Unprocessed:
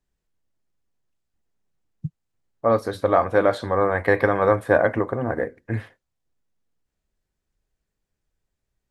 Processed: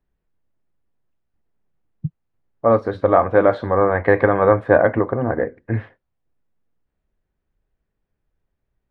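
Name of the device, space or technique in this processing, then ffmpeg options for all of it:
phone in a pocket: -af "lowpass=3.1k,highshelf=f=2.4k:g=-8,volume=4.5dB"

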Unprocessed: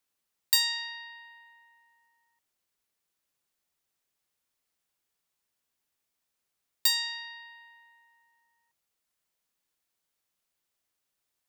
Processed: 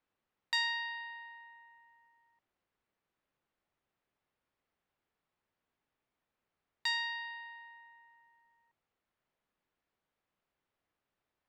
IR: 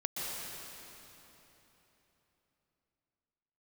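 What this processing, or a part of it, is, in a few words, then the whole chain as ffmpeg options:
phone in a pocket: -af "lowpass=3.1k,highshelf=f=2.3k:g=-10,volume=5dB"

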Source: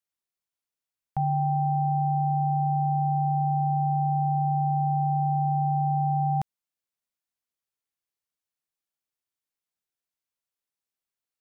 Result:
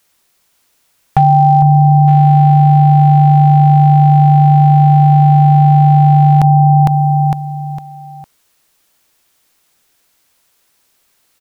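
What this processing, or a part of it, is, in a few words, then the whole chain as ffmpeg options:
loud club master: -af "equalizer=f=130:w=1.1:g=-2,aecho=1:1:456|912|1368|1824:0.398|0.131|0.0434|0.0143,acompressor=threshold=-29dB:ratio=2,asoftclip=type=hard:threshold=-23.5dB,alimiter=level_in=32dB:limit=-1dB:release=50:level=0:latency=1,volume=-1dB"

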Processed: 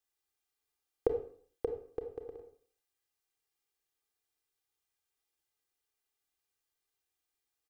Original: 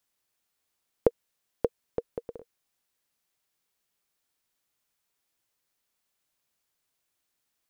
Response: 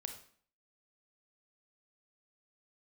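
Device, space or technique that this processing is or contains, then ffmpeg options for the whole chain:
microphone above a desk: -filter_complex "[0:a]aecho=1:1:2.5:0.87[a];[1:a]atrim=start_sample=2205[b];[a][b]afir=irnorm=-1:irlink=0,volume=-7dB"

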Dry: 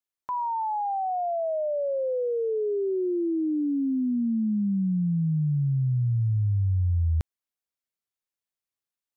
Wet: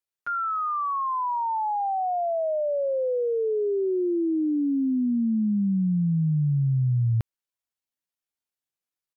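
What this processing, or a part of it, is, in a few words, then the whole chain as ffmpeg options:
chipmunk voice: -af "asetrate=62367,aresample=44100,atempo=0.707107,volume=1dB"

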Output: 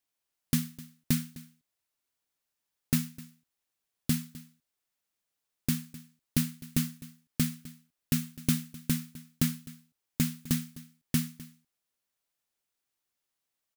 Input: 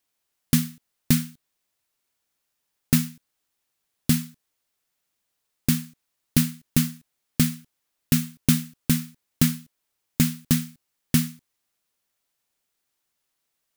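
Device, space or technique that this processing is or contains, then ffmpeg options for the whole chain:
ducked delay: -filter_complex "[0:a]asplit=3[a][b][c];[b]adelay=256,volume=-9dB[d];[c]apad=whole_len=618135[e];[d][e]sidechaincompress=threshold=-26dB:ratio=12:attack=16:release=1030[f];[a][f]amix=inputs=2:normalize=0,volume=-7.5dB"

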